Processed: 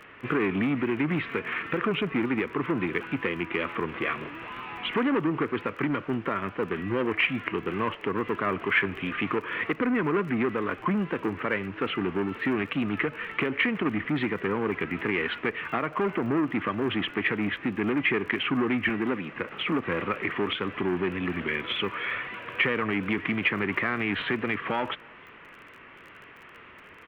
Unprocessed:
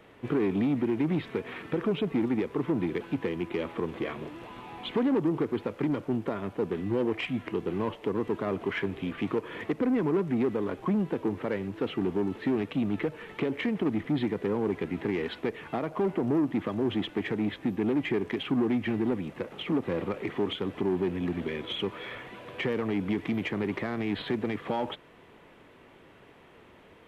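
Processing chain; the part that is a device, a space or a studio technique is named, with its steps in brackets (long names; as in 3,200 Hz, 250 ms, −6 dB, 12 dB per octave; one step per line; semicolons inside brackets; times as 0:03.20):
lo-fi chain (low-pass filter 3,900 Hz 12 dB per octave; tape wow and flutter; surface crackle 31 per second −43 dBFS)
0:18.89–0:19.33: high-pass filter 140 Hz
flat-topped bell 1,800 Hz +11.5 dB
slap from a distant wall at 53 metres, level −28 dB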